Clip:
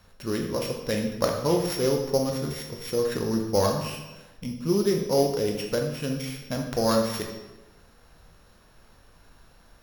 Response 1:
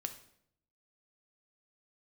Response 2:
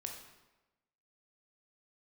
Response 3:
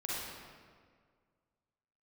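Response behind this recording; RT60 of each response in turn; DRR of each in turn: 2; 0.70, 1.1, 1.9 seconds; 7.0, 1.5, −7.0 decibels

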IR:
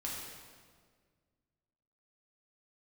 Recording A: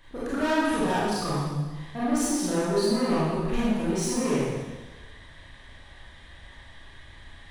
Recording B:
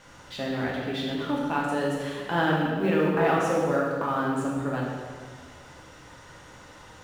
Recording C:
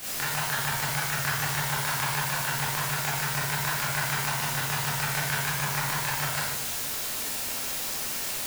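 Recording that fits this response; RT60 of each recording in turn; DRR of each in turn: B; 1.3, 1.8, 0.90 seconds; −10.0, −5.0, −10.5 decibels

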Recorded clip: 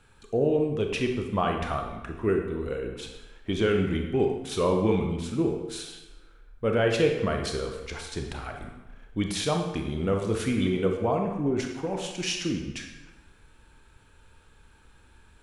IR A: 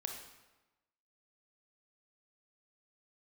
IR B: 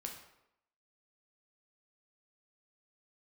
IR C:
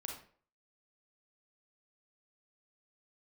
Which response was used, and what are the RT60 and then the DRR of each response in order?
A; 1.1, 0.80, 0.50 seconds; 2.5, 1.5, 0.5 decibels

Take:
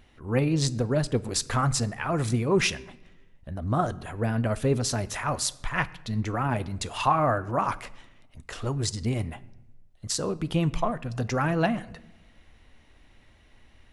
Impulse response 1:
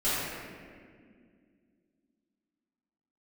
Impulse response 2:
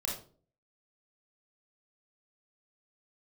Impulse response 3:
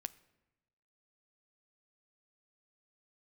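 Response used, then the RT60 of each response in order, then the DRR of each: 3; 2.0, 0.45, 1.0 seconds; −14.0, −2.0, 14.0 decibels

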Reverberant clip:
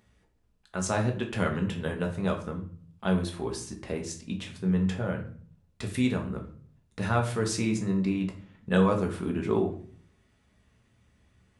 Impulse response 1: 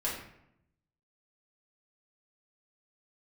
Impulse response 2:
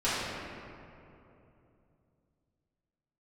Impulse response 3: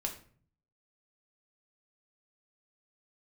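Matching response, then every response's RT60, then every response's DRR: 3; 0.75, 2.9, 0.50 seconds; −7.0, −14.0, 1.5 decibels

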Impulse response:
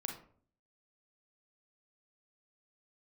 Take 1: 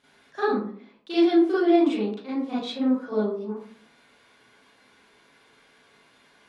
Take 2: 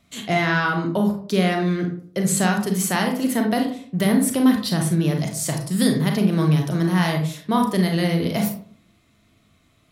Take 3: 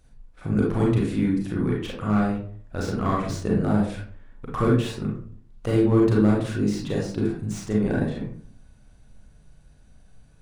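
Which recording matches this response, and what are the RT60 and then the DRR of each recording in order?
2; 0.50, 0.50, 0.50 seconds; −11.5, 2.0, −3.5 decibels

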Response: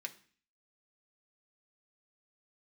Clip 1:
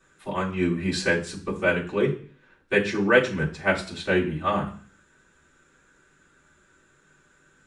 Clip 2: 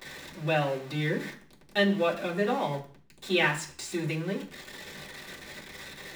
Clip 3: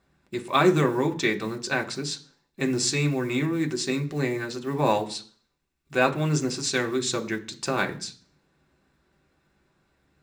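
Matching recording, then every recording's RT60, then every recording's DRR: 3; 0.45, 0.45, 0.45 seconds; −11.0, −5.5, 3.0 decibels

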